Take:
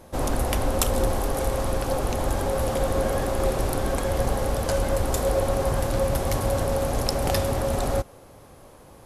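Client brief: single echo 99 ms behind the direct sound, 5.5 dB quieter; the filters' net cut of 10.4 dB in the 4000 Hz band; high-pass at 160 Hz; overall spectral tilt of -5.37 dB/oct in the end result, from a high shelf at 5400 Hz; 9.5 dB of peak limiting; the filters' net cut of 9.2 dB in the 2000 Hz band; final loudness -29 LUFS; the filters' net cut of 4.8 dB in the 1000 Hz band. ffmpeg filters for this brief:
-af "highpass=160,equalizer=f=1k:t=o:g=-4.5,equalizer=f=2k:t=o:g=-8,equalizer=f=4k:t=o:g=-8.5,highshelf=f=5.4k:g=-6.5,alimiter=limit=-22dB:level=0:latency=1,aecho=1:1:99:0.531,volume=1dB"

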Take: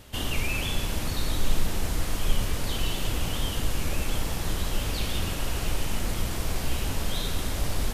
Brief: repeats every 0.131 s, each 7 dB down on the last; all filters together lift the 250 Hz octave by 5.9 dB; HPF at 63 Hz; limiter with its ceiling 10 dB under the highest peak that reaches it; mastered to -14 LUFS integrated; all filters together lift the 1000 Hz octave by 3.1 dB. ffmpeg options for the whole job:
-af "highpass=63,equalizer=f=250:t=o:g=7.5,equalizer=f=1k:t=o:g=3.5,alimiter=level_in=2.5dB:limit=-24dB:level=0:latency=1,volume=-2.5dB,aecho=1:1:131|262|393|524|655:0.447|0.201|0.0905|0.0407|0.0183,volume=20.5dB"

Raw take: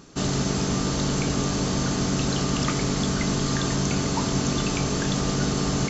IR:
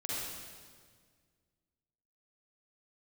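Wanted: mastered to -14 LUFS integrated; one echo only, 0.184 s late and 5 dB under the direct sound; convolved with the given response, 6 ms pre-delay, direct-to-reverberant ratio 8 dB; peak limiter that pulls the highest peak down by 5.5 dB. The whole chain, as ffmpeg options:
-filter_complex "[0:a]alimiter=limit=-16.5dB:level=0:latency=1,aecho=1:1:184:0.562,asplit=2[a][b];[1:a]atrim=start_sample=2205,adelay=6[c];[b][c]afir=irnorm=-1:irlink=0,volume=-11.5dB[d];[a][d]amix=inputs=2:normalize=0,volume=9dB"

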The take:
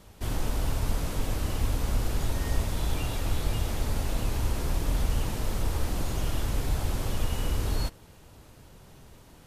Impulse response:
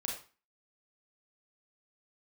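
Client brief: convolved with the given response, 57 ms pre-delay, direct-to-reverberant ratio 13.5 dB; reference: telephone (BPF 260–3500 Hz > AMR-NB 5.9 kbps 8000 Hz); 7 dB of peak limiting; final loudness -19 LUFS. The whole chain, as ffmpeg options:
-filter_complex "[0:a]alimiter=limit=-19.5dB:level=0:latency=1,asplit=2[a][b];[1:a]atrim=start_sample=2205,adelay=57[c];[b][c]afir=irnorm=-1:irlink=0,volume=-15dB[d];[a][d]amix=inputs=2:normalize=0,highpass=260,lowpass=3.5k,volume=24.5dB" -ar 8000 -c:a libopencore_amrnb -b:a 5900

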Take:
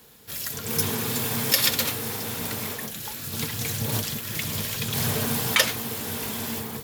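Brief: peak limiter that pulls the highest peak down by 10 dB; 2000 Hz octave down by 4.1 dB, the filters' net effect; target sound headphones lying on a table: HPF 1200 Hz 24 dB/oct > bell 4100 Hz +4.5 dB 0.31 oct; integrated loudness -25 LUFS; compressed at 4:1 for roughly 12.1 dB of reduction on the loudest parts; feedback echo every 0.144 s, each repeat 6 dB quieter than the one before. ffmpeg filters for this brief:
-af "equalizer=f=2k:t=o:g=-5,acompressor=threshold=-30dB:ratio=4,alimiter=level_in=1dB:limit=-24dB:level=0:latency=1,volume=-1dB,highpass=f=1.2k:w=0.5412,highpass=f=1.2k:w=1.3066,equalizer=f=4.1k:t=o:w=0.31:g=4.5,aecho=1:1:144|288|432|576|720|864:0.501|0.251|0.125|0.0626|0.0313|0.0157,volume=8dB"

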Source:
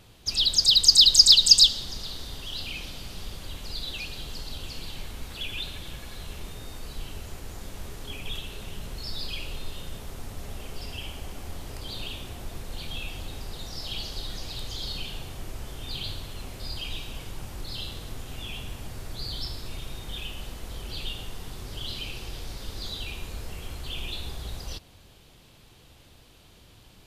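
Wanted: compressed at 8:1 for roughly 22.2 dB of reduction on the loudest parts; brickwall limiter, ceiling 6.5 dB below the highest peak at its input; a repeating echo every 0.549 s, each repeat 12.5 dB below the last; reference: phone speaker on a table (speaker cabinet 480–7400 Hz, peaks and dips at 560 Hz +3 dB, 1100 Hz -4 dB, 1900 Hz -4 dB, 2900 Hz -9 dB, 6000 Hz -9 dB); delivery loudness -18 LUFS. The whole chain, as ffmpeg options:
-af "acompressor=threshold=-34dB:ratio=8,alimiter=level_in=6dB:limit=-24dB:level=0:latency=1,volume=-6dB,highpass=f=480:w=0.5412,highpass=f=480:w=1.3066,equalizer=f=560:t=q:w=4:g=3,equalizer=f=1.1k:t=q:w=4:g=-4,equalizer=f=1.9k:t=q:w=4:g=-4,equalizer=f=2.9k:t=q:w=4:g=-9,equalizer=f=6k:t=q:w=4:g=-9,lowpass=f=7.4k:w=0.5412,lowpass=f=7.4k:w=1.3066,aecho=1:1:549|1098|1647:0.237|0.0569|0.0137,volume=27.5dB"

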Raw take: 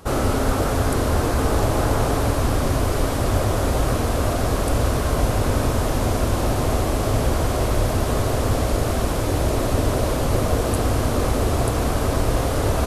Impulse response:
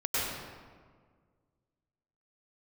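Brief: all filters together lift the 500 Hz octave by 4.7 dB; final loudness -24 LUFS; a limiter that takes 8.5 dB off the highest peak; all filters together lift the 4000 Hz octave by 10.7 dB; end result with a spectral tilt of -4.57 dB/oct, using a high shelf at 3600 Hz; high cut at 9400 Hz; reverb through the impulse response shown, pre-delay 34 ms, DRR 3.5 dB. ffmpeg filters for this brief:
-filter_complex "[0:a]lowpass=9.4k,equalizer=f=500:t=o:g=5.5,highshelf=f=3.6k:g=6.5,equalizer=f=4k:t=o:g=9,alimiter=limit=-12.5dB:level=0:latency=1,asplit=2[a][b];[1:a]atrim=start_sample=2205,adelay=34[c];[b][c]afir=irnorm=-1:irlink=0,volume=-13dB[d];[a][d]amix=inputs=2:normalize=0,volume=-4dB"

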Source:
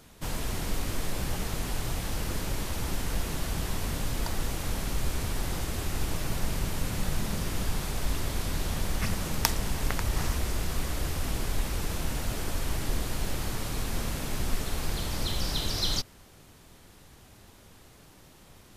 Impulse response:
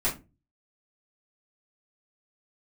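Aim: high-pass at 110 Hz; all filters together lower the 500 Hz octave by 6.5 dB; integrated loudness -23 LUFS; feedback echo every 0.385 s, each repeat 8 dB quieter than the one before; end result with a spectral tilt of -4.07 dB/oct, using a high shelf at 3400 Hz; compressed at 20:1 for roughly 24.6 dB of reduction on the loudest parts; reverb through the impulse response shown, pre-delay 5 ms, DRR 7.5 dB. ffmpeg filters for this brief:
-filter_complex "[0:a]highpass=110,equalizer=f=500:t=o:g=-8.5,highshelf=f=3.4k:g=-4.5,acompressor=threshold=-49dB:ratio=20,aecho=1:1:385|770|1155|1540|1925:0.398|0.159|0.0637|0.0255|0.0102,asplit=2[a][b];[1:a]atrim=start_sample=2205,adelay=5[c];[b][c]afir=irnorm=-1:irlink=0,volume=-17dB[d];[a][d]amix=inputs=2:normalize=0,volume=28dB"

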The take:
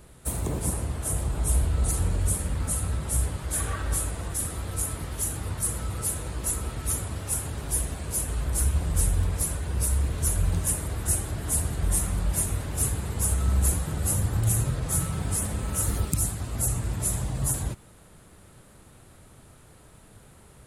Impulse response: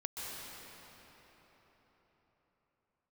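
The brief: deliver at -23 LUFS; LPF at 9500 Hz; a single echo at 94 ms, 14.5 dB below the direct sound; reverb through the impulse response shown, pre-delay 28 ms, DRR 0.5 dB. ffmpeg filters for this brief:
-filter_complex "[0:a]lowpass=9.5k,aecho=1:1:94:0.188,asplit=2[a][b];[1:a]atrim=start_sample=2205,adelay=28[c];[b][c]afir=irnorm=-1:irlink=0,volume=-2.5dB[d];[a][d]amix=inputs=2:normalize=0,volume=3dB"

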